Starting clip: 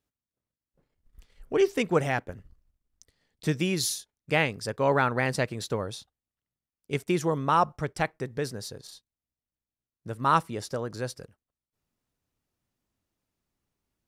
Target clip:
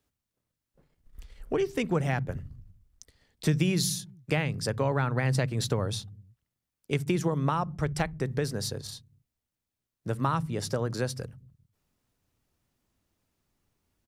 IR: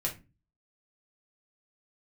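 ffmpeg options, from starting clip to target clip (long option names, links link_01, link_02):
-filter_complex "[0:a]acrossover=split=160[link_01][link_02];[link_01]aecho=1:1:60|129|208.4|299.6|404.5:0.631|0.398|0.251|0.158|0.1[link_03];[link_02]acompressor=threshold=-32dB:ratio=6[link_04];[link_03][link_04]amix=inputs=2:normalize=0,volume=5.5dB"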